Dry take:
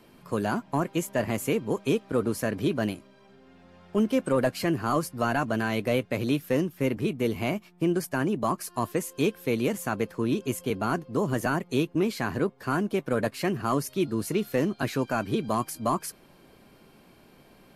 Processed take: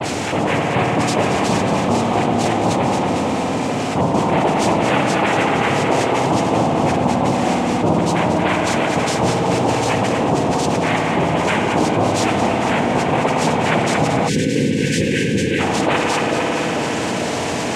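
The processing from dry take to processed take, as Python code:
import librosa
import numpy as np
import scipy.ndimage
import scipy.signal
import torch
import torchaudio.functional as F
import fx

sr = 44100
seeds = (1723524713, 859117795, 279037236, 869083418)

p1 = x + 0.5 * 10.0 ** (-37.5 / 20.0) * np.sign(x)
p2 = fx.level_steps(p1, sr, step_db=12)
p3 = p1 + (p2 * librosa.db_to_amplitude(2.0))
p4 = fx.robotise(p3, sr, hz=301.0)
p5 = fx.dispersion(p4, sr, late='highs', ms=68.0, hz=2800.0)
p6 = fx.noise_vocoder(p5, sr, seeds[0], bands=4)
p7 = p6 + fx.echo_split(p6, sr, split_hz=690.0, low_ms=444, high_ms=228, feedback_pct=52, wet_db=-8.0, dry=0)
p8 = fx.rev_spring(p7, sr, rt60_s=3.8, pass_ms=(56,), chirp_ms=45, drr_db=3.5)
p9 = fx.spec_box(p8, sr, start_s=14.29, length_s=1.31, low_hz=540.0, high_hz=1500.0, gain_db=-30)
y = fx.env_flatten(p9, sr, amount_pct=70)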